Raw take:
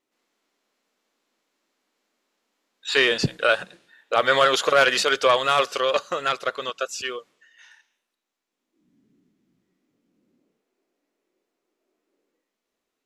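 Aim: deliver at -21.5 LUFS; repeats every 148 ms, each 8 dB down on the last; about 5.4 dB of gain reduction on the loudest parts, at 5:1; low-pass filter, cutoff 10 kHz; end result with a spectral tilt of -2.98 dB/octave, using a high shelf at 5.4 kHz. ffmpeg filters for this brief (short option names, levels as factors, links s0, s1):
-af "lowpass=10000,highshelf=f=5400:g=-6,acompressor=threshold=0.112:ratio=5,aecho=1:1:148|296|444|592|740:0.398|0.159|0.0637|0.0255|0.0102,volume=1.5"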